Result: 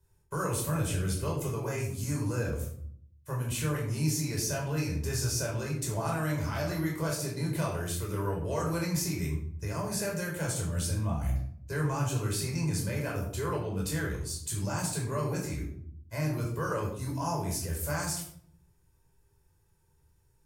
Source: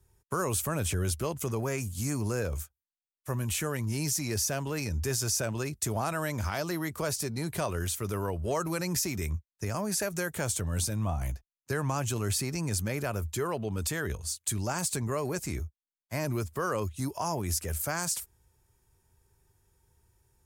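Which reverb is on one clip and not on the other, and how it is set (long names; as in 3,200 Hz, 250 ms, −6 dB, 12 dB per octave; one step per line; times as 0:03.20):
rectangular room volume 930 cubic metres, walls furnished, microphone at 5 metres
level −8 dB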